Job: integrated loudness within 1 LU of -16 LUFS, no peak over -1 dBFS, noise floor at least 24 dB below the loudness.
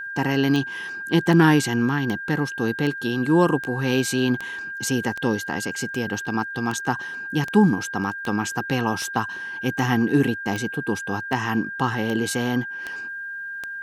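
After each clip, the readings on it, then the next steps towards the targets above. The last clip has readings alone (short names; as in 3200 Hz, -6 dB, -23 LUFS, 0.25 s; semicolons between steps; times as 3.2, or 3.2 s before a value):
clicks 18; steady tone 1600 Hz; tone level -30 dBFS; loudness -23.5 LUFS; peak -5.5 dBFS; loudness target -16.0 LUFS
-> de-click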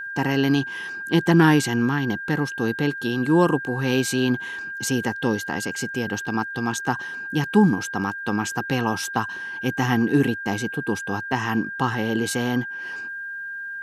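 clicks 0; steady tone 1600 Hz; tone level -30 dBFS
-> notch 1600 Hz, Q 30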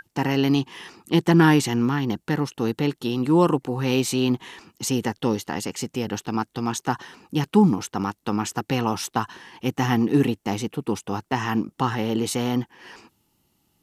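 steady tone none; loudness -23.5 LUFS; peak -6.0 dBFS; loudness target -16.0 LUFS
-> gain +7.5 dB; limiter -1 dBFS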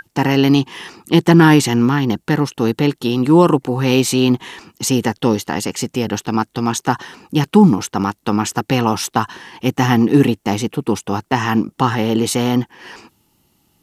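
loudness -16.5 LUFS; peak -1.0 dBFS; noise floor -64 dBFS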